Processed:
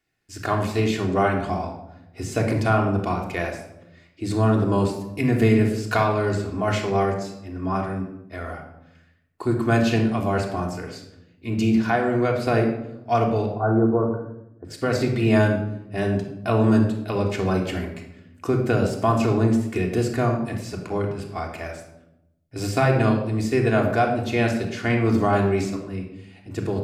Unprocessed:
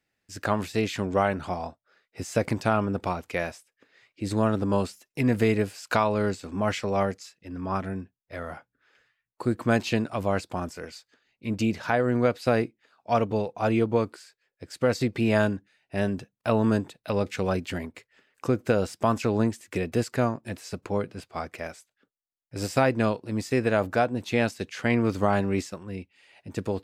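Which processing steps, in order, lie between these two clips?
13.46–14.65 s: elliptic low-pass 1.5 kHz, stop band 40 dB; simulated room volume 2500 m³, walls furnished, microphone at 3.3 m

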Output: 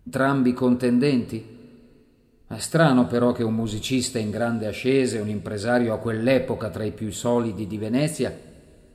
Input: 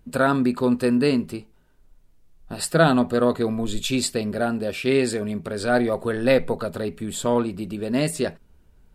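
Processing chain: high-pass 50 Hz; bass shelf 160 Hz +9 dB; two-slope reverb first 0.58 s, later 3 s, from -15 dB, DRR 11 dB; trim -2.5 dB

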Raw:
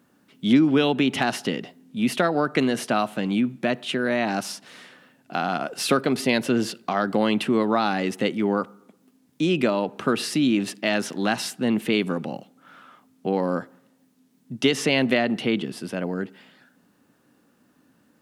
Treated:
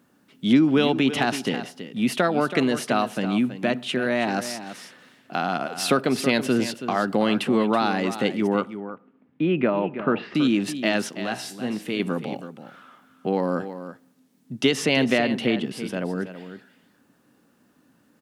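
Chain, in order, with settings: 8.47–10.35 s: low-pass 2.5 kHz 24 dB/octave; 11.09–12.00 s: feedback comb 63 Hz, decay 0.58 s, harmonics all, mix 60%; on a send: delay 327 ms -11.5 dB

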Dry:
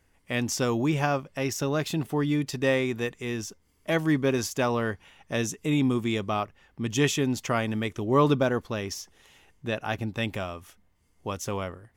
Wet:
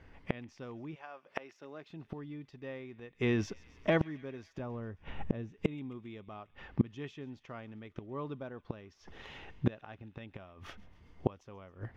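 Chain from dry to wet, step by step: 0.94–1.88 s: high-pass 810 Hz -> 220 Hz 12 dB/octave; 3.17–4.01 s: compression 3:1, threshold -39 dBFS, peak gain reduction 14 dB; 4.59–5.52 s: tilt EQ -3 dB/octave; inverted gate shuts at -25 dBFS, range -29 dB; distance through air 260 m; feedback echo behind a high-pass 135 ms, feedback 69%, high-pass 2 kHz, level -20 dB; trim +10.5 dB

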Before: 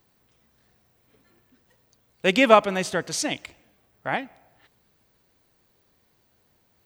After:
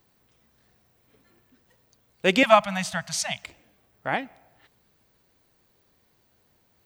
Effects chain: 2.43–3.44 s: elliptic band-stop 200–660 Hz

